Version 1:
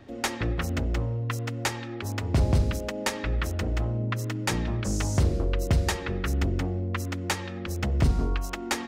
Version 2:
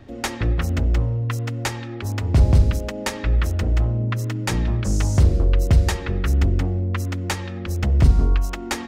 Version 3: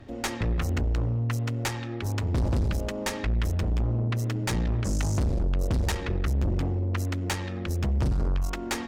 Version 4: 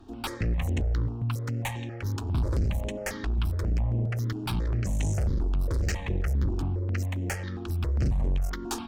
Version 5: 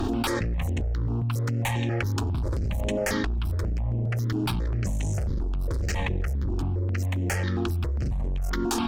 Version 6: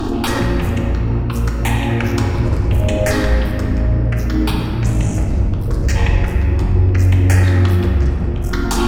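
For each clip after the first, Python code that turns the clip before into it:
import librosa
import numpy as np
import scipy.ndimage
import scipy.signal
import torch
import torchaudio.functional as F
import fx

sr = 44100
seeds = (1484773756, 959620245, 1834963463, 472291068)

y1 = fx.low_shelf(x, sr, hz=110.0, db=9.5)
y1 = y1 * librosa.db_to_amplitude(2.0)
y2 = fx.tube_stage(y1, sr, drive_db=22.0, bias=0.5)
y3 = fx.phaser_held(y2, sr, hz=7.4, low_hz=550.0, high_hz=4800.0)
y4 = fx.env_flatten(y3, sr, amount_pct=100)
y4 = y4 * librosa.db_to_amplitude(-3.5)
y5 = fx.room_shoebox(y4, sr, seeds[0], volume_m3=210.0, walls='hard', distance_m=0.54)
y5 = y5 * librosa.db_to_amplitude(6.0)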